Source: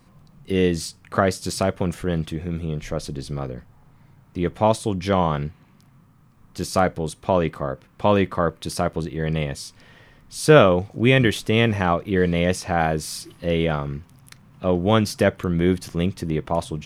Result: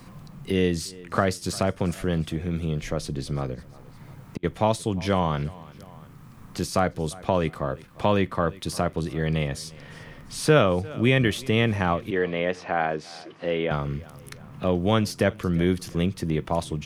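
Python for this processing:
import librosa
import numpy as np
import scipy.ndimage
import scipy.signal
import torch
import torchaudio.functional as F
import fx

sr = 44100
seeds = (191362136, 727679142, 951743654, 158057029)

y = fx.peak_eq(x, sr, hz=570.0, db=-2.0, octaves=2.7)
y = fx.gate_flip(y, sr, shuts_db=-20.0, range_db=-40, at=(3.54, 4.43), fade=0.02)
y = fx.bandpass_edges(y, sr, low_hz=310.0, high_hz=2700.0, at=(12.1, 13.71))
y = fx.echo_feedback(y, sr, ms=349, feedback_pct=39, wet_db=-24.0)
y = fx.band_squash(y, sr, depth_pct=40)
y = y * librosa.db_to_amplitude(-1.5)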